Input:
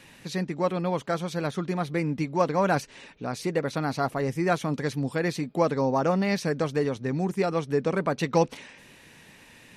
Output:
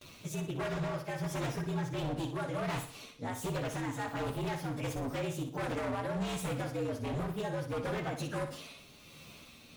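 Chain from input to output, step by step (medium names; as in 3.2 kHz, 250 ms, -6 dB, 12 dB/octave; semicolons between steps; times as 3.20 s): frequency axis rescaled in octaves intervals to 117%; gate with hold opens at -48 dBFS; in parallel at +1.5 dB: compression, threshold -36 dBFS, peak gain reduction 17 dB; on the sum: peak limiter -20 dBFS, peak gain reduction 11 dB; tremolo 1.4 Hz, depth 39%; wavefolder -26.5 dBFS; on a send: flutter echo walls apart 10.2 m, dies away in 0.44 s; on the sum: trim -3.5 dB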